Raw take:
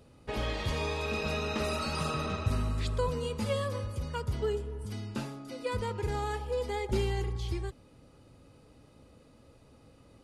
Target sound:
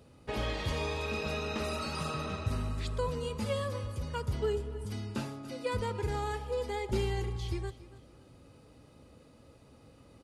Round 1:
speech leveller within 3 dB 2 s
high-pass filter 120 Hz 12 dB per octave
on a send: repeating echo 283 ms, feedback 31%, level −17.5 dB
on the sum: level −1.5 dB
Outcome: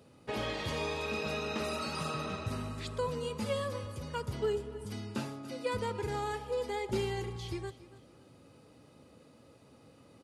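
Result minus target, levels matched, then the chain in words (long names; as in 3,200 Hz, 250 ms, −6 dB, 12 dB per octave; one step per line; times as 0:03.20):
125 Hz band −3.5 dB
speech leveller within 3 dB 2 s
high-pass filter 39 Hz 12 dB per octave
on a send: repeating echo 283 ms, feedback 31%, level −17.5 dB
on the sum: level −1.5 dB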